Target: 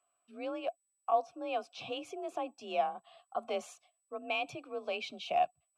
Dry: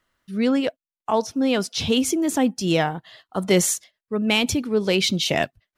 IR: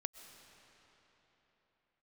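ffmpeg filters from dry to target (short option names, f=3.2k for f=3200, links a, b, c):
-filter_complex "[0:a]asplit=2[a][b];[b]acompressor=threshold=-31dB:ratio=6,volume=0dB[c];[a][c]amix=inputs=2:normalize=0,asubboost=boost=5:cutoff=95,aeval=exprs='val(0)+0.00501*sin(2*PI*7900*n/s)':c=same,afreqshift=38,asplit=3[d][e][f];[d]bandpass=f=730:t=q:w=8,volume=0dB[g];[e]bandpass=f=1.09k:t=q:w=8,volume=-6dB[h];[f]bandpass=f=2.44k:t=q:w=8,volume=-9dB[i];[g][h][i]amix=inputs=3:normalize=0,volume=-3.5dB"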